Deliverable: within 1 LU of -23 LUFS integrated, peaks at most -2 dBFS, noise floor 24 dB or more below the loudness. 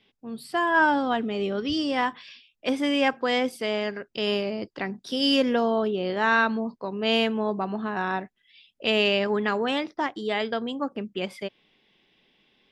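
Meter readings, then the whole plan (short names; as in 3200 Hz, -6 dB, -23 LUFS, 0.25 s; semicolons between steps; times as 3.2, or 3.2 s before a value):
loudness -25.5 LUFS; peak -9.0 dBFS; loudness target -23.0 LUFS
-> gain +2.5 dB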